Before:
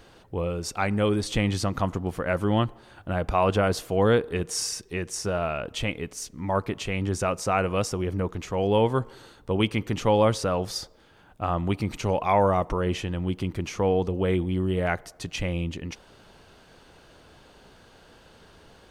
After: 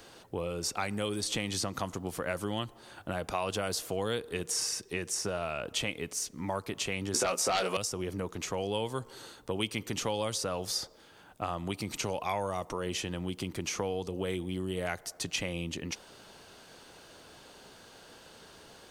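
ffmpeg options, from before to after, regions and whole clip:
-filter_complex "[0:a]asettb=1/sr,asplit=3[a][b][c];[a]atrim=end=7.144[d];[b]atrim=start=7.14:end=7.77,asetpts=PTS-STARTPTS,afade=t=in:d=0.004:c=qsin,afade=t=out:st=0.626:d=0.004:c=qsin,highpass=280,asplit=2[e][f];[f]adelay=16,volume=-3dB[g];[e][g]amix=inputs=2:normalize=0,atrim=end_sample=27783,aeval=exprs='0.376*sin(PI/2*2.51*val(0)/0.376)':c=same[h];[c]atrim=start=7.766[i];[d][h]acrossfade=d=0.004:c1=hsin:c2=qsin[j];[j][i]acrossfade=d=0.004:c1=qsin:c2=hsin,bass=f=250:g=-1,treble=f=4k:g=7,acrossover=split=97|3200[k][l][m];[k]acompressor=threshold=-42dB:ratio=4[n];[l]acompressor=threshold=-31dB:ratio=4[o];[m]acompressor=threshold=-33dB:ratio=4[p];[n][o][p]amix=inputs=3:normalize=0,lowshelf=f=92:g=-11.5"

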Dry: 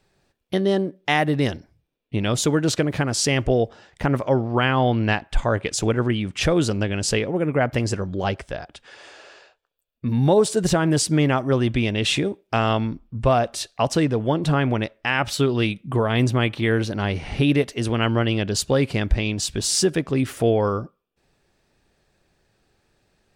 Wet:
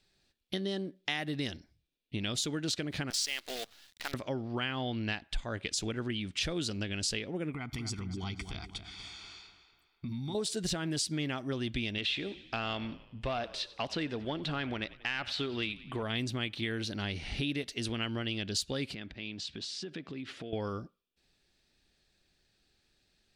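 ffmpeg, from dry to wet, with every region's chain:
-filter_complex "[0:a]asettb=1/sr,asplit=3[a][b][c];[a]atrim=end=3.104[d];[b]atrim=start=3.1:end=4.14,asetpts=PTS-STARTPTS,afade=t=in:d=0.004:c=qsin,afade=t=out:st=1.036:d=0.004:c=qsin,highpass=790,acrusher=bits=6:dc=4:mix=0:aa=0.000001[e];[c]atrim=start=4.136[f];[d][e]acrossfade=d=0.004:c1=hsin:c2=qsin[g];[g][f]acrossfade=d=0.004:c1=qsin:c2=hsin,asettb=1/sr,asplit=3[h][i][j];[h]atrim=end=7.544[k];[i]atrim=start=7.54:end=10.35,asetpts=PTS-STARTPTS,afade=t=in:d=0.004:c=qsin,afade=t=out:st=2.806:d=0.004:c=qsin,aecho=1:1:0.9:0.98,atrim=end_sample=123921,acompressor=threshold=-24dB:ratio=5:attack=3.2:release=140:knee=1:detection=peak,asplit=2[l][m];[m]adelay=244,lowpass=f=3.2k:p=1,volume=-9dB,asplit=2[n][o];[o]adelay=244,lowpass=f=3.2k:p=1,volume=0.46,asplit=2[p][q];[q]adelay=244,lowpass=f=3.2k:p=1,volume=0.46,asplit=2[r][s];[s]adelay=244,lowpass=f=3.2k:p=1,volume=0.46,asplit=2[t][u];[u]adelay=244,lowpass=f=3.2k:p=1,volume=0.46[v];[l][n][p][r][t][v]amix=inputs=6:normalize=0,atrim=end_sample=123921[w];[j]atrim=start=10.346[x];[k][w]acrossfade=d=0.004:c1=hsin:c2=qsin[y];[y][x]acrossfade=d=0.004:c1=qsin:c2=hsin,asettb=1/sr,asplit=3[z][aa][ab];[z]atrim=end=11.984[ac];[aa]atrim=start=11.98:end=16.03,asetpts=PTS-STARTPTS,afade=t=in:d=0.004:c=qsin,afade=t=out:st=4.046:d=0.004:c=qsin,acrossover=split=4500[ad][ae];[ae]acompressor=threshold=-45dB:ratio=4:attack=1:release=60[af];[ad][af]amix=inputs=2:normalize=0,asplit=6[ag][ah][ai][aj][ak][al];[ah]adelay=92,afreqshift=-39,volume=-20dB[am];[ai]adelay=184,afreqshift=-78,volume=-24.7dB[an];[aj]adelay=276,afreqshift=-117,volume=-29.5dB[ao];[ak]adelay=368,afreqshift=-156,volume=-34.2dB[ap];[al]adelay=460,afreqshift=-195,volume=-38.9dB[aq];[ag][am][an][ao][ap][aq]amix=inputs=6:normalize=0,atrim=end_sample=178605,asplit=2[ar][as];[as]highpass=f=720:p=1,volume=8dB,asoftclip=type=tanh:threshold=-7.5dB[at];[ar][at]amix=inputs=2:normalize=0,lowpass=f=2.5k:p=1,volume=-6dB[au];[ab]atrim=start=16.026[av];[ac][au]acrossfade=d=0.004:c1=hsin:c2=qsin[aw];[aw][av]acrossfade=d=0.004:c1=qsin:c2=hsin,asettb=1/sr,asplit=3[ax][ay][az];[ax]atrim=end=18.944[ba];[ay]atrim=start=18.94:end=20.53,asetpts=PTS-STARTPTS,afade=t=in:d=0.004:c=qsin,afade=t=out:st=1.586:d=0.004:c=qsin,acompressor=threshold=-26dB:ratio=8:attack=3.2:release=140:knee=1:detection=peak,highpass=130,lowpass=3.4k[bb];[az]atrim=start=20.526[bc];[ba][bb]acrossfade=d=0.004:c1=hsin:c2=qsin[bd];[bd][bc]acrossfade=d=0.004:c1=qsin:c2=hsin,equalizer=f=125:t=o:w=1:g=-6,equalizer=f=500:t=o:w=1:g=-6,equalizer=f=1k:t=o:w=1:g=-7,equalizer=f=4k:t=o:w=1:g=8,acompressor=threshold=-25dB:ratio=3,volume=-6.5dB"

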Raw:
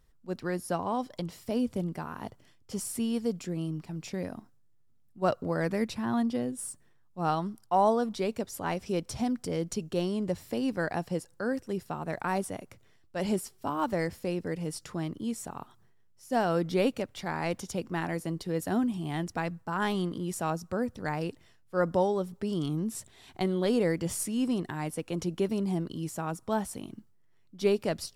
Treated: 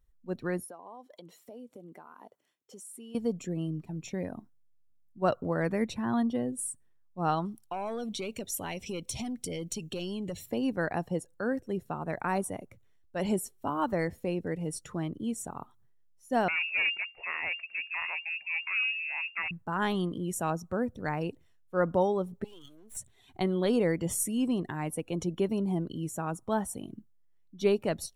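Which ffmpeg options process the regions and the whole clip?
-filter_complex "[0:a]asettb=1/sr,asplit=3[a][b][c];[a]atrim=end=0.644[d];[b]atrim=start=0.64:end=3.15,asetpts=PTS-STARTPTS,afade=t=in:d=0.004:c=qsin,afade=t=out:st=2.506:d=0.004:c=qsin,highpass=340,acompressor=threshold=-45dB:ratio=4:attack=3.2:release=140:knee=1:detection=peak[e];[c]atrim=start=3.146[f];[d][e]acrossfade=d=0.004:c1=hsin:c2=qsin[g];[g][f]acrossfade=d=0.004:c1=qsin:c2=hsin,asettb=1/sr,asplit=3[h][i][j];[h]atrim=end=7.454[k];[i]atrim=start=7.45:end=10.46,asetpts=PTS-STARTPTS,afade=t=in:d=0.004:c=qsin,afade=t=out:st=3.006:d=0.004:c=qsin,highshelf=f=1.9k:t=q:w=1.5:g=7,aeval=exprs='(tanh(12.6*val(0)+0.2)-tanh(0.2))/12.6':c=same,acompressor=threshold=-32dB:ratio=5:attack=3.2:release=140:knee=1:detection=peak[l];[j]atrim=start=10.456[m];[k][l]acrossfade=d=0.004:c1=hsin:c2=qsin[n];[n][m]acrossfade=d=0.004:c1=qsin:c2=hsin,asettb=1/sr,asplit=3[o][p][q];[o]atrim=end=16.484[r];[p]atrim=start=16.48:end=19.51,asetpts=PTS-STARTPTS,afade=t=in:d=0.004:c=qsin,afade=t=out:st=3.026:d=0.004:c=qsin,aeval=exprs='clip(val(0),-1,0.02)':c=same,lowpass=f=2.4k:t=q:w=0.5098,lowpass=f=2.4k:t=q:w=0.6013,lowpass=f=2.4k:t=q:w=0.9,lowpass=f=2.4k:t=q:w=2.563,afreqshift=-2800[s];[q]atrim=start=19.506[t];[r][s]acrossfade=d=0.004:c1=hsin:c2=qsin[u];[u][t]acrossfade=d=0.004:c1=qsin:c2=hsin,asettb=1/sr,asplit=3[v][w][x];[v]atrim=end=22.444[y];[w]atrim=start=22.44:end=22.97,asetpts=PTS-STARTPTS,afade=t=in:d=0.004:c=qsin,afade=t=out:st=0.526:d=0.004:c=qsin,highpass=770,aeval=exprs='max(val(0),0)':c=same[z];[x]atrim=start=22.966[aa];[y][z]acrossfade=d=0.004:c1=hsin:c2=qsin[ab];[ab][aa]acrossfade=d=0.004:c1=qsin:c2=hsin,bandreject=f=4.9k:w=5.3,afftdn=nr=13:nf=-49,highshelf=f=11k:g=8.5"

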